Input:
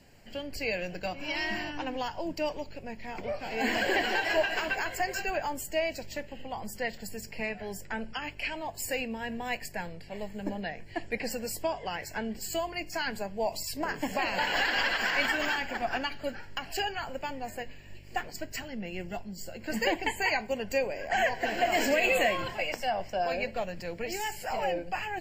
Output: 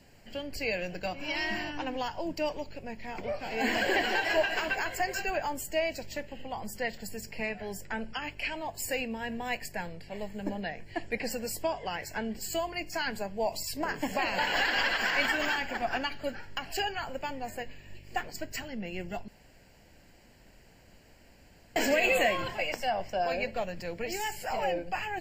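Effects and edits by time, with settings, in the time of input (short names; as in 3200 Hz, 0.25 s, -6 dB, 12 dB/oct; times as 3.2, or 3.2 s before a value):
19.28–21.76 room tone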